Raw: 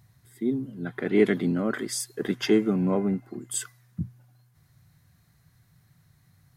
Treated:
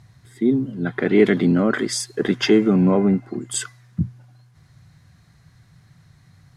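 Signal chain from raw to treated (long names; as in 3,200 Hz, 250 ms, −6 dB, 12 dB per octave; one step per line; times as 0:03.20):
low-pass filter 7,000 Hz 12 dB per octave
in parallel at +2 dB: brickwall limiter −18.5 dBFS, peak gain reduction 10 dB
on the sum: level +2 dB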